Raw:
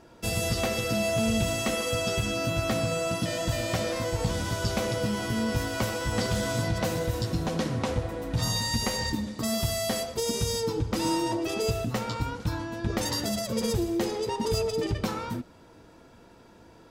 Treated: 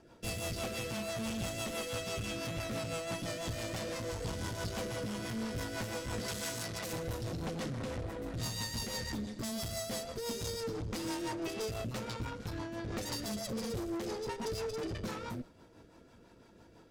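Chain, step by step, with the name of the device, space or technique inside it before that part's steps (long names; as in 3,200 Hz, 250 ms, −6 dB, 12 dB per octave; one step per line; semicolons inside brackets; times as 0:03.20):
overdriven rotary cabinet (tube saturation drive 33 dB, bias 0.7; rotating-speaker cabinet horn 6 Hz)
0:06.28–0:06.93: spectral tilt +2 dB per octave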